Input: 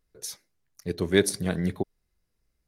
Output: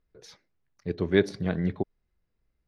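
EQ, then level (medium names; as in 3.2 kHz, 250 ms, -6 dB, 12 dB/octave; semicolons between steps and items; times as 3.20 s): distance through air 240 m; 0.0 dB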